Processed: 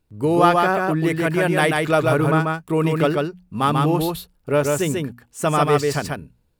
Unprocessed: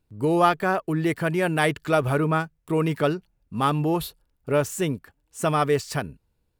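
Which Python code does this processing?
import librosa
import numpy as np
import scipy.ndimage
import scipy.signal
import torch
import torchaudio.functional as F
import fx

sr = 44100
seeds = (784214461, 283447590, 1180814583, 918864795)

y = fx.hum_notches(x, sr, base_hz=60, count=4)
y = y + 10.0 ** (-3.0 / 20.0) * np.pad(y, (int(140 * sr / 1000.0), 0))[:len(y)]
y = F.gain(torch.from_numpy(y), 3.0).numpy()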